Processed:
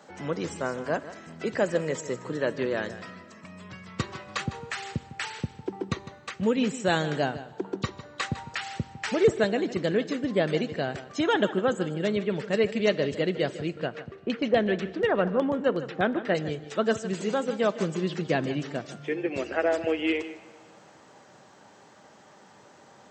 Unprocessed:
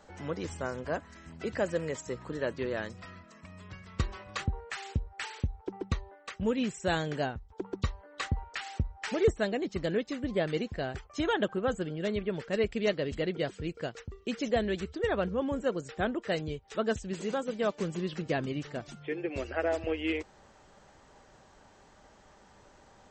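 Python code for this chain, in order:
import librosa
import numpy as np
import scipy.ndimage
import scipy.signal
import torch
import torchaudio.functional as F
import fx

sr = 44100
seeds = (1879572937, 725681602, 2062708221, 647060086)

y = scipy.signal.sosfilt(scipy.signal.butter(4, 120.0, 'highpass', fs=sr, output='sos'), x)
y = fx.filter_lfo_lowpass(y, sr, shape='saw_down', hz=8.2, low_hz=870.0, high_hz=5000.0, q=1.1, at=(13.69, 16.35))
y = y + 10.0 ** (-14.5 / 20.0) * np.pad(y, (int(154 * sr / 1000.0), 0))[:len(y)]
y = fx.rev_plate(y, sr, seeds[0], rt60_s=2.0, hf_ratio=0.9, predelay_ms=0, drr_db=17.0)
y = y * librosa.db_to_amplitude(5.0)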